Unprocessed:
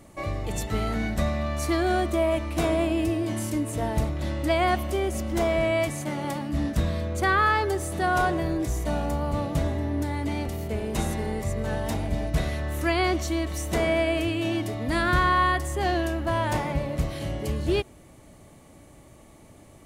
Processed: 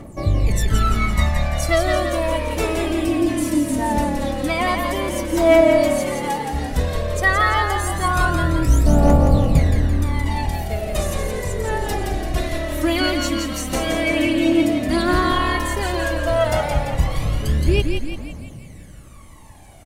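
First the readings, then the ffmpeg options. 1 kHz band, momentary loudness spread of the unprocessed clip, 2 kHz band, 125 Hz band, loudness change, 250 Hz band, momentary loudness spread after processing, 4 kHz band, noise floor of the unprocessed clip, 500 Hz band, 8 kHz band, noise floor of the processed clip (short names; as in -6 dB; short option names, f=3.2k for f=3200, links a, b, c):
+4.5 dB, 7 LU, +5.5 dB, +7.5 dB, +6.5 dB, +7.0 dB, 9 LU, +7.5 dB, -51 dBFS, +6.5 dB, +7.5 dB, -39 dBFS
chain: -filter_complex "[0:a]aphaser=in_gain=1:out_gain=1:delay=3.9:decay=0.76:speed=0.11:type=triangular,asplit=8[a][b][c][d][e][f][g][h];[b]adelay=170,afreqshift=-37,volume=-5dB[i];[c]adelay=340,afreqshift=-74,volume=-10.5dB[j];[d]adelay=510,afreqshift=-111,volume=-16dB[k];[e]adelay=680,afreqshift=-148,volume=-21.5dB[l];[f]adelay=850,afreqshift=-185,volume=-27.1dB[m];[g]adelay=1020,afreqshift=-222,volume=-32.6dB[n];[h]adelay=1190,afreqshift=-259,volume=-38.1dB[o];[a][i][j][k][l][m][n][o]amix=inputs=8:normalize=0,volume=2dB"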